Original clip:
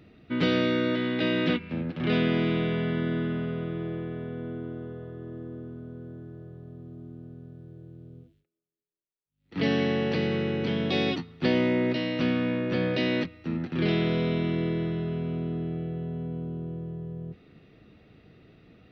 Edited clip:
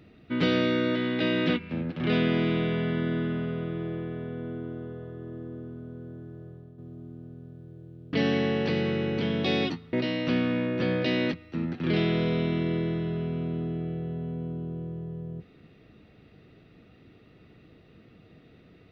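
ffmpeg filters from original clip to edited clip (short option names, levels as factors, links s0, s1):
-filter_complex "[0:a]asplit=4[s0][s1][s2][s3];[s0]atrim=end=6.78,asetpts=PTS-STARTPTS,afade=t=out:st=6.49:d=0.29:silence=0.421697[s4];[s1]atrim=start=6.78:end=8.132,asetpts=PTS-STARTPTS,afade=t=in:d=0.004:c=hsin:silence=0.421697[s5];[s2]atrim=start=9.588:end=11.392[s6];[s3]atrim=start=11.848[s7];[s4][s5]concat=n=2:v=0:a=1[s8];[s8][s6]acrossfade=d=0.004:c1=hsin:c2=hsin[s9];[s9][s7]acrossfade=d=0.004:c1=hsin:c2=hsin"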